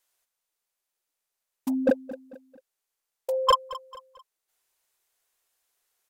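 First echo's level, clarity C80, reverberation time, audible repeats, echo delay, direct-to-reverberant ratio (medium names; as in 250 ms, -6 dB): -17.0 dB, no reverb, no reverb, 3, 222 ms, no reverb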